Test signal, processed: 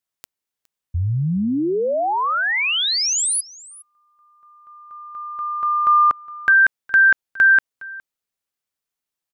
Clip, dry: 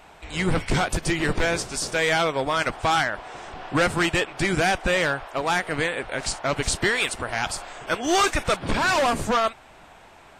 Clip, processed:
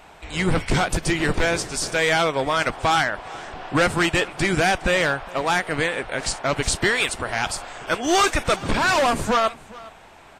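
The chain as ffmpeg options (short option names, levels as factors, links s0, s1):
-af "aecho=1:1:413:0.0891,volume=1.26"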